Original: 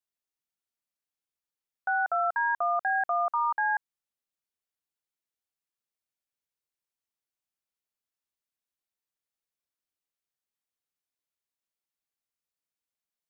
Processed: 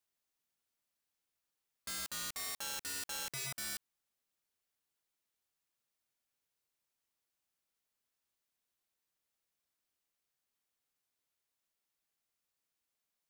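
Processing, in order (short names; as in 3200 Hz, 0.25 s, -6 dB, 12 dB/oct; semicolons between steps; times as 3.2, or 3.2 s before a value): limiter -29.5 dBFS, peak gain reduction 9.5 dB; wrapped overs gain 40 dB; gain +4 dB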